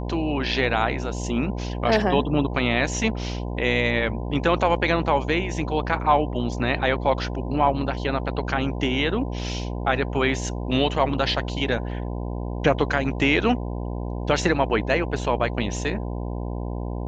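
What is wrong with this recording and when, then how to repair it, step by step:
buzz 60 Hz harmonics 17 -29 dBFS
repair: de-hum 60 Hz, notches 17

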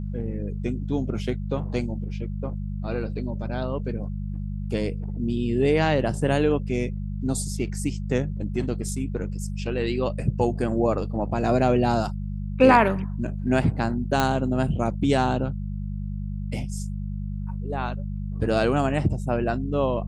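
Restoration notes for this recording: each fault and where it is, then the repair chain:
hum 50 Hz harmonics 4 -30 dBFS
14.20 s: pop -7 dBFS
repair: de-click; de-hum 50 Hz, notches 4

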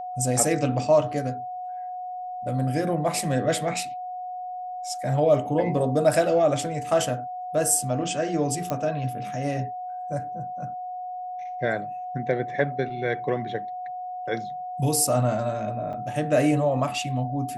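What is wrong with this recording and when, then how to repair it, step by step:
whine 730 Hz -31 dBFS
8.70 s: pop -14 dBFS
15.93–15.94 s: dropout 5.6 ms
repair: de-click; band-stop 730 Hz, Q 30; interpolate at 15.93 s, 5.6 ms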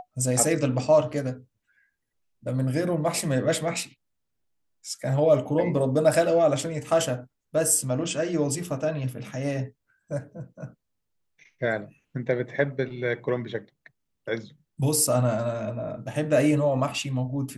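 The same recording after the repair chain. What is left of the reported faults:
nothing left

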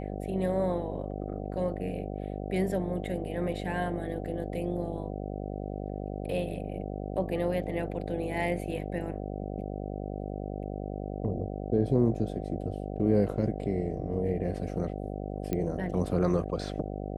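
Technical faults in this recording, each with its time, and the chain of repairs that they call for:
buzz 50 Hz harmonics 15 -36 dBFS
15.53 s: pop -17 dBFS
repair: de-click; de-hum 50 Hz, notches 15

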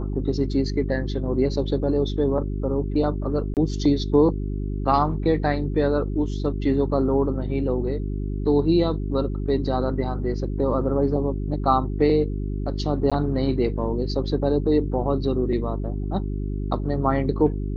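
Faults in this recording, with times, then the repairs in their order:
hum 50 Hz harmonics 8 -27 dBFS
3.54–3.57 s: dropout 28 ms
13.10–13.12 s: dropout 16 ms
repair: de-hum 50 Hz, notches 8; interpolate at 3.54 s, 28 ms; interpolate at 13.10 s, 16 ms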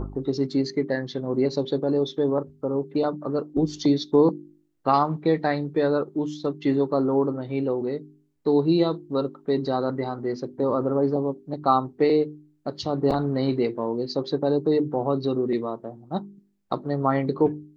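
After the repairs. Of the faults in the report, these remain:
nothing left

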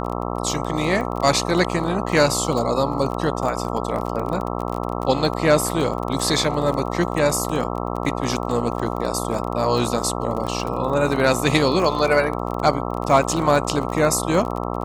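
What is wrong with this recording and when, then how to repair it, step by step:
buzz 60 Hz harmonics 22 -26 dBFS
crackle 24 per s -25 dBFS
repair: de-click; de-hum 60 Hz, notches 22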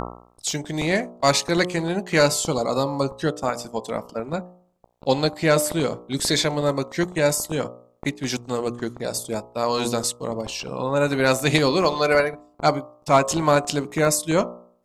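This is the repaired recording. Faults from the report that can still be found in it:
nothing left

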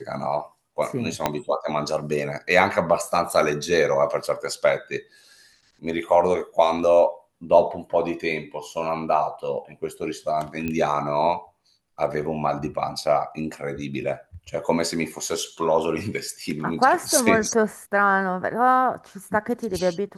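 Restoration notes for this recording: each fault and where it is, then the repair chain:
1.26 s: pop -6 dBFS
10.68 s: pop -15 dBFS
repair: de-click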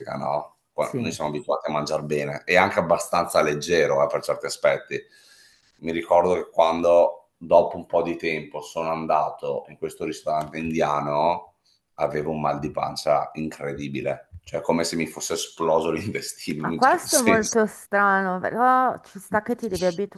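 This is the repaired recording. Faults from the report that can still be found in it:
1.26 s: pop

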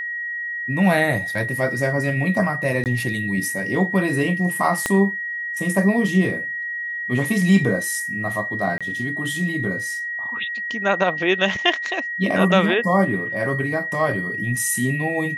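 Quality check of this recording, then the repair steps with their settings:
whine 1.9 kHz -25 dBFS
2.84–2.86 s: dropout 18 ms
4.86 s: pop -6 dBFS
8.78–8.81 s: dropout 26 ms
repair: de-click; band-stop 1.9 kHz, Q 30; interpolate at 2.84 s, 18 ms; interpolate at 8.78 s, 26 ms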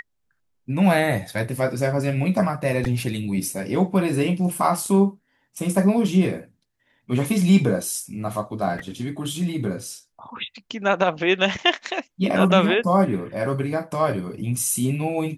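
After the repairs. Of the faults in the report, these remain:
4.86 s: pop

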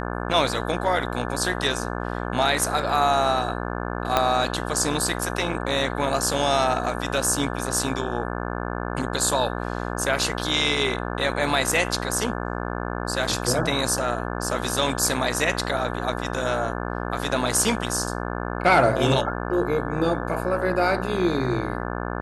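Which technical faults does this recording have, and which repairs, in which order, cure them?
buzz 60 Hz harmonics 29 -29 dBFS
4.17 s: pop -5 dBFS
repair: de-click; de-hum 60 Hz, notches 29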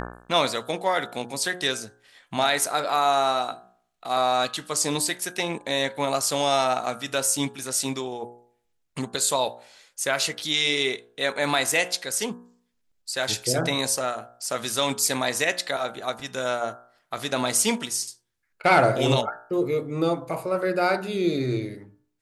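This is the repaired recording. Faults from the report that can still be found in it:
4.17 s: pop

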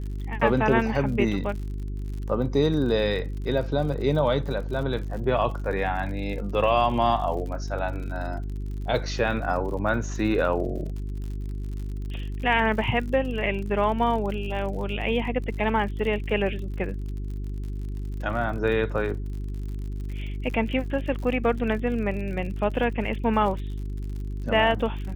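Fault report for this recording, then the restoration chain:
crackle 59 per s -35 dBFS
hum 50 Hz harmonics 8 -31 dBFS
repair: de-click; de-hum 50 Hz, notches 8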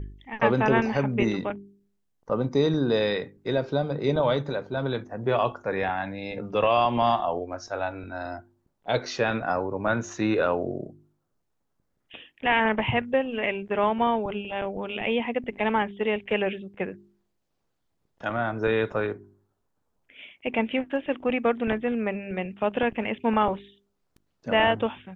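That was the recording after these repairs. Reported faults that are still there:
nothing left

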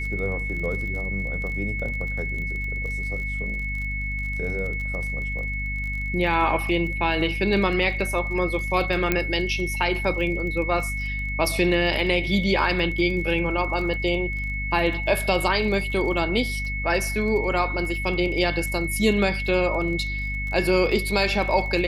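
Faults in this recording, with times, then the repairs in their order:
crackle 29 per s -32 dBFS
hum 50 Hz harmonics 5 -30 dBFS
whine 2.2 kHz -29 dBFS
9.12 s: pop -7 dBFS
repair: de-click; de-hum 50 Hz, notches 5; band-stop 2.2 kHz, Q 30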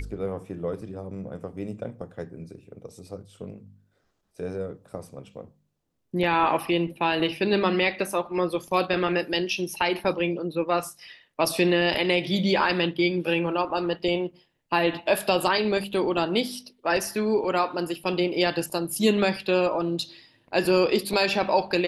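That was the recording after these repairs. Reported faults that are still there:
nothing left

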